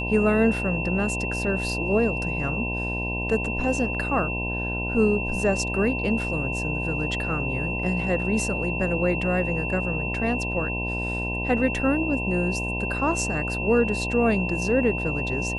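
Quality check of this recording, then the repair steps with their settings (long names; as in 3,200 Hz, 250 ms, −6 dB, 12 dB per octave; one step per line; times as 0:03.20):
mains buzz 60 Hz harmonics 17 −30 dBFS
whistle 2,700 Hz −29 dBFS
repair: hum removal 60 Hz, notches 17
notch filter 2,700 Hz, Q 30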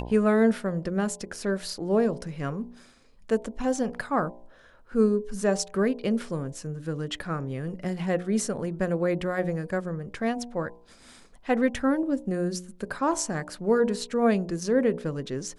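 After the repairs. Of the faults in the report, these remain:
none of them is left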